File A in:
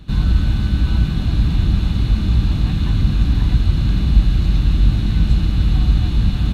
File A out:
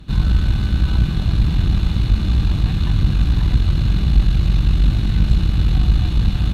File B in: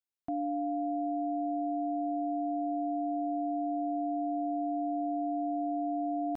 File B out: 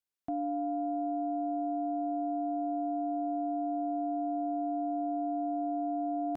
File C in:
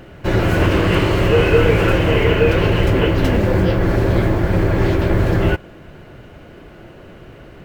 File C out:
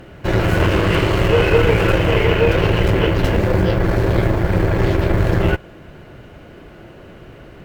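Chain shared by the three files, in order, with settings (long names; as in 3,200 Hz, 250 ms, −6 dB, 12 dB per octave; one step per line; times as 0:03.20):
dynamic equaliser 250 Hz, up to −6 dB, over −38 dBFS, Q 3.3
tube saturation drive 6 dB, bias 0.6
level +3 dB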